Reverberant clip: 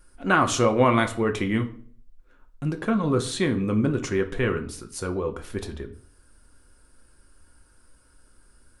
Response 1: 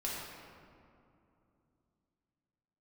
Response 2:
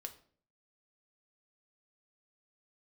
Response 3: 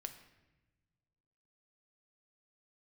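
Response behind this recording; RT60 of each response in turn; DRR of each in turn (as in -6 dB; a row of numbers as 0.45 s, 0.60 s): 2; 2.7 s, 0.50 s, no single decay rate; -6.0 dB, 5.0 dB, 6.5 dB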